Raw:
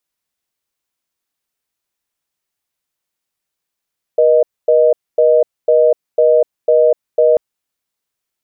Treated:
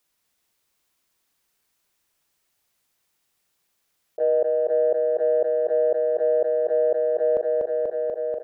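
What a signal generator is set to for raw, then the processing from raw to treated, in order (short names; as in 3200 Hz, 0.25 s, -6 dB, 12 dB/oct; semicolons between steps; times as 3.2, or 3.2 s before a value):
call progress tone reorder tone, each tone -10 dBFS 3.19 s
gate -8 dBFS, range -34 dB; on a send: feedback echo 0.243 s, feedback 58%, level -7 dB; on the sum: fast leveller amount 70%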